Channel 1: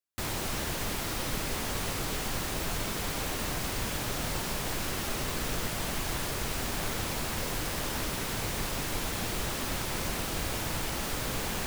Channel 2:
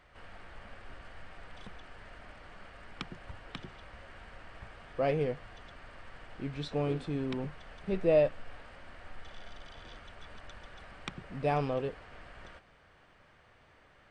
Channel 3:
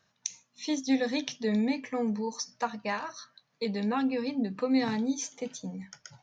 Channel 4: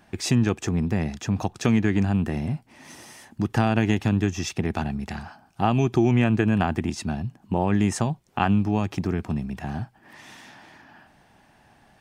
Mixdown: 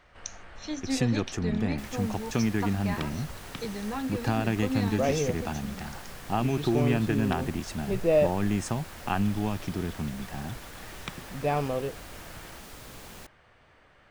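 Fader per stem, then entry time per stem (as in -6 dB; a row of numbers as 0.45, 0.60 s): -12.5, +2.5, -4.5, -6.0 dB; 1.60, 0.00, 0.00, 0.70 s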